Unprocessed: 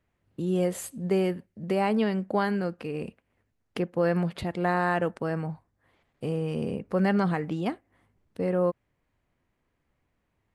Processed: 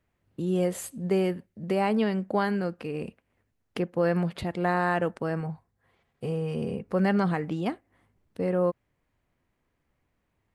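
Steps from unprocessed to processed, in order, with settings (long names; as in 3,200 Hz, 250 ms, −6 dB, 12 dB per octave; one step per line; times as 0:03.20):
0:05.40–0:06.88: notch comb filter 300 Hz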